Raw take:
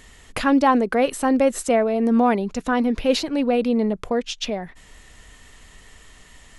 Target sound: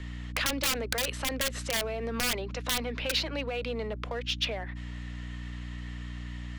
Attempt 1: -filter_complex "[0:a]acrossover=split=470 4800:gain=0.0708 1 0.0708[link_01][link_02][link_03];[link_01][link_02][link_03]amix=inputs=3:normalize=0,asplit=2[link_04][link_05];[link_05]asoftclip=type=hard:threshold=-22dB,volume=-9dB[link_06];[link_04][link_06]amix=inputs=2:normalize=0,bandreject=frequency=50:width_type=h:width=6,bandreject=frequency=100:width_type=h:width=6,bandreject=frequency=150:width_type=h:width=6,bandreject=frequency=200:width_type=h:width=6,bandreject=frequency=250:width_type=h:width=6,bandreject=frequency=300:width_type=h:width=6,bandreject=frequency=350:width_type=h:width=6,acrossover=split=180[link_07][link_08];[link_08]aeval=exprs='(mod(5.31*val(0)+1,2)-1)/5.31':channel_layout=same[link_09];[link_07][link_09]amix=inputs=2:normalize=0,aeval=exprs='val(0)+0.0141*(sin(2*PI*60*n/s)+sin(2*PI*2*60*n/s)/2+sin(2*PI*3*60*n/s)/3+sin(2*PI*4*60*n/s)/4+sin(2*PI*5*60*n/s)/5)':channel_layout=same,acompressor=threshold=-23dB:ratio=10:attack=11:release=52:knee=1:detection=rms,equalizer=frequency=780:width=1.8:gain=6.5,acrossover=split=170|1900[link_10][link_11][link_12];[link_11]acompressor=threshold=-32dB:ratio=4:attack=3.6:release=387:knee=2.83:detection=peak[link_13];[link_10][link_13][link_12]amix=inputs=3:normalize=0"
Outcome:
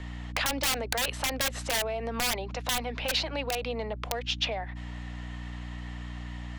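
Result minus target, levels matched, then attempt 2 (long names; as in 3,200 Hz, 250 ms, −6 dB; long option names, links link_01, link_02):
1,000 Hz band +3.5 dB; hard clipping: distortion −5 dB
-filter_complex "[0:a]acrossover=split=470 4800:gain=0.0708 1 0.0708[link_01][link_02][link_03];[link_01][link_02][link_03]amix=inputs=3:normalize=0,asplit=2[link_04][link_05];[link_05]asoftclip=type=hard:threshold=-31dB,volume=-9dB[link_06];[link_04][link_06]amix=inputs=2:normalize=0,bandreject=frequency=50:width_type=h:width=6,bandreject=frequency=100:width_type=h:width=6,bandreject=frequency=150:width_type=h:width=6,bandreject=frequency=200:width_type=h:width=6,bandreject=frequency=250:width_type=h:width=6,bandreject=frequency=300:width_type=h:width=6,bandreject=frequency=350:width_type=h:width=6,acrossover=split=180[link_07][link_08];[link_08]aeval=exprs='(mod(5.31*val(0)+1,2)-1)/5.31':channel_layout=same[link_09];[link_07][link_09]amix=inputs=2:normalize=0,aeval=exprs='val(0)+0.0141*(sin(2*PI*60*n/s)+sin(2*PI*2*60*n/s)/2+sin(2*PI*3*60*n/s)/3+sin(2*PI*4*60*n/s)/4+sin(2*PI*5*60*n/s)/5)':channel_layout=same,acompressor=threshold=-23dB:ratio=10:attack=11:release=52:knee=1:detection=rms,equalizer=frequency=780:width=1.8:gain=-4.5,acrossover=split=170|1900[link_10][link_11][link_12];[link_11]acompressor=threshold=-32dB:ratio=4:attack=3.6:release=387:knee=2.83:detection=peak[link_13];[link_10][link_13][link_12]amix=inputs=3:normalize=0"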